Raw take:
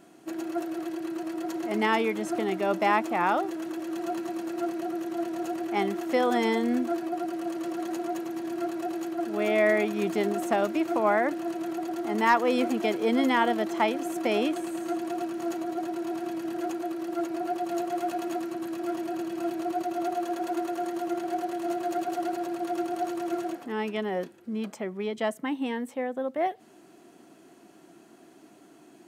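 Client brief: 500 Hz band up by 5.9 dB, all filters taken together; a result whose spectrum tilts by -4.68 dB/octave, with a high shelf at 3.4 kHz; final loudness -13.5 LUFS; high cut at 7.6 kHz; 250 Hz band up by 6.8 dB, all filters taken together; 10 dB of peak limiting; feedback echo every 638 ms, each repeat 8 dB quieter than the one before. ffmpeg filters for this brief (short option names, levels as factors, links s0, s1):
-af "lowpass=7600,equalizer=f=250:t=o:g=7,equalizer=f=500:t=o:g=5.5,highshelf=f=3400:g=6,alimiter=limit=0.141:level=0:latency=1,aecho=1:1:638|1276|1914|2552|3190:0.398|0.159|0.0637|0.0255|0.0102,volume=3.98"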